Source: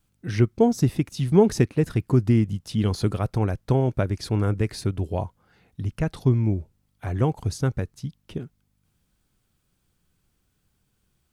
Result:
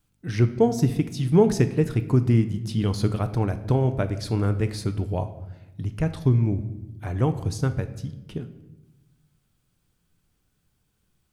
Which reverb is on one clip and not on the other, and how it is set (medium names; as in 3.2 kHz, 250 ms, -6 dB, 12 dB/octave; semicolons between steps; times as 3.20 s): simulated room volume 430 m³, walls mixed, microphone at 0.43 m; trim -1 dB